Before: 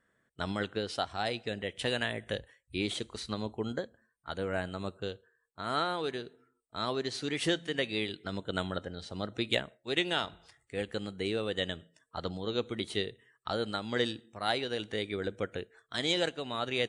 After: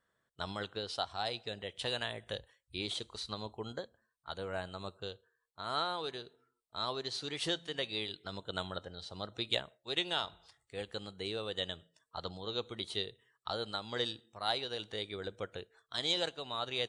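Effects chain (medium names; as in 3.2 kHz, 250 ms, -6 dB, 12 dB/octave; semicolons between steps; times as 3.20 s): graphic EQ 250/1000/2000/4000 Hz -6/+5/-5/+7 dB; trim -5.5 dB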